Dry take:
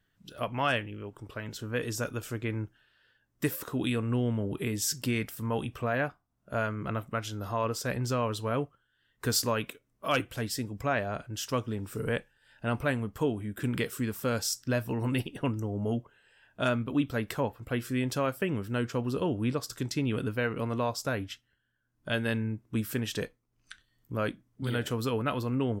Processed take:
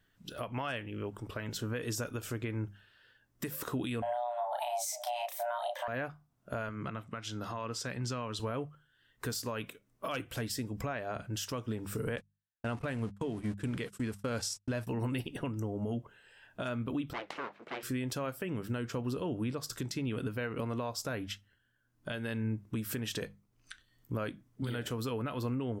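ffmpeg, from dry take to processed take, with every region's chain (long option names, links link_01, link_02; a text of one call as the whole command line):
ffmpeg -i in.wav -filter_complex "[0:a]asettb=1/sr,asplit=3[link_01][link_02][link_03];[link_01]atrim=end=4.024[link_04];[link_02]atrim=start=4.02:end=5.88,asetpts=PTS-STARTPTS,afade=type=in:duration=0.004:curve=qsin,afade=type=out:start_time=1.856:duration=0.004:curve=qsin,equalizer=frequency=220:width_type=o:width=0.3:gain=7.5,asplit=2[link_05][link_06];[link_06]adelay=33,volume=-2.5dB[link_07];[link_05][link_07]amix=inputs=2:normalize=0,atrim=end_sample=82026,afreqshift=480[link_08];[link_03]atrim=start=5.876[link_09];[link_04][link_08]acrossfade=duration=0.004:curve1=hsin:curve2=qsin[link_10];[link_10][link_09]acrossfade=duration=0.004:curve1=qsin:curve2=hsin,asettb=1/sr,asplit=3[link_11][link_12][link_13];[link_11]atrim=end=6.694[link_14];[link_12]atrim=start=6.69:end=8.4,asetpts=PTS-STARTPTS,afade=type=in:duration=0.004:curve=qsin,afade=type=out:start_time=1.706:duration=0.004:curve=qsin,highpass=120,lowpass=7500,equalizer=frequency=510:width_type=o:width=2:gain=-5.5[link_15];[link_13]atrim=start=8.396[link_16];[link_14][link_15]acrossfade=duration=0.004:curve1=hsin:curve2=qsin[link_17];[link_17][link_16]acrossfade=duration=0.004:curve1=qsin:curve2=hsin,asettb=1/sr,asplit=3[link_18][link_19][link_20];[link_18]atrim=end=12.164[link_21];[link_19]atrim=start=12.16:end=14.87,asetpts=PTS-STARTPTS,afade=type=in:duration=0.004:curve=qsin,afade=type=out:start_time=2.706:duration=0.004:curve=qsin,aeval=exprs='val(0)+0.5*0.00708*sgn(val(0))':channel_layout=same,agate=range=-59dB:threshold=-37dB:ratio=16:release=100:detection=peak,lowpass=frequency=11000:width=0.5412,lowpass=frequency=11000:width=1.3066[link_22];[link_20]atrim=start=14.866[link_23];[link_21][link_22]acrossfade=duration=0.004:curve1=hsin:curve2=qsin[link_24];[link_24][link_23]acrossfade=duration=0.004:curve1=qsin:curve2=hsin,asettb=1/sr,asplit=3[link_25][link_26][link_27];[link_25]atrim=end=17.134[link_28];[link_26]atrim=start=17.13:end=17.83,asetpts=PTS-STARTPTS,afade=type=in:duration=0.004:curve=qsin,afade=type=out:start_time=0.696:duration=0.004:curve=qsin,aeval=exprs='abs(val(0))':channel_layout=same,highpass=350,lowpass=3600[link_29];[link_27]atrim=start=17.826[link_30];[link_28][link_29]acrossfade=duration=0.004:curve1=hsin:curve2=qsin[link_31];[link_31][link_30]acrossfade=duration=0.004:curve1=qsin:curve2=hsin,acompressor=threshold=-32dB:ratio=3,bandreject=frequency=50:width_type=h:width=6,bandreject=frequency=100:width_type=h:width=6,bandreject=frequency=150:width_type=h:width=6,bandreject=frequency=200:width_type=h:width=6,alimiter=level_in=5.5dB:limit=-24dB:level=0:latency=1:release=215,volume=-5.5dB,volume=3dB" out.wav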